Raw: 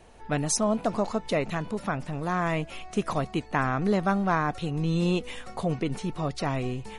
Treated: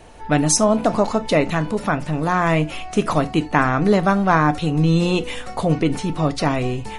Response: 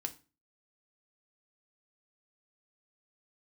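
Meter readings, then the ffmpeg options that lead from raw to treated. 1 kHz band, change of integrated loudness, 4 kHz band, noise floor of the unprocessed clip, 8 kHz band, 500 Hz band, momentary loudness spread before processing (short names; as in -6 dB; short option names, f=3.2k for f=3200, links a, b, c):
+9.0 dB, +9.0 dB, +9.0 dB, -45 dBFS, +9.0 dB, +9.0 dB, 7 LU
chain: -filter_complex "[0:a]asplit=2[a][b];[1:a]atrim=start_sample=2205,atrim=end_sample=3969[c];[b][c]afir=irnorm=-1:irlink=0,volume=4dB[d];[a][d]amix=inputs=2:normalize=0,volume=1.5dB"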